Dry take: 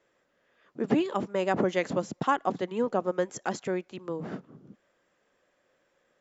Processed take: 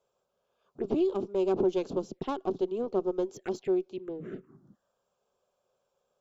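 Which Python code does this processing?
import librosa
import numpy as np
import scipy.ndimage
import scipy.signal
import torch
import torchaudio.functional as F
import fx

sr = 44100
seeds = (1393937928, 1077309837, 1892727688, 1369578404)

y = fx.diode_clip(x, sr, knee_db=-28.5)
y = fx.peak_eq(y, sr, hz=380.0, db=14.0, octaves=0.34)
y = fx.env_phaser(y, sr, low_hz=320.0, high_hz=1900.0, full_db=-25.0)
y = y * 10.0 ** (-4.5 / 20.0)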